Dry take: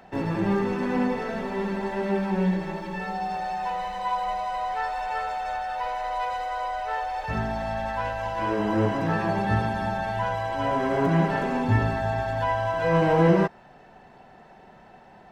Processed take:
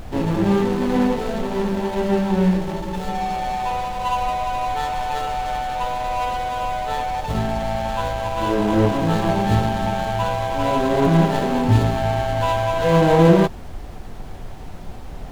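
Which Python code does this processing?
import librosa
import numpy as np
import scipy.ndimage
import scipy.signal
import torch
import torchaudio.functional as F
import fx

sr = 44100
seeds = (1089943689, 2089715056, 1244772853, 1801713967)

y = scipy.ndimage.median_filter(x, 25, mode='constant')
y = fx.high_shelf(y, sr, hz=5000.0, db=5.0)
y = fx.dmg_noise_colour(y, sr, seeds[0], colour='brown', level_db=-38.0)
y = y * 10.0 ** (6.5 / 20.0)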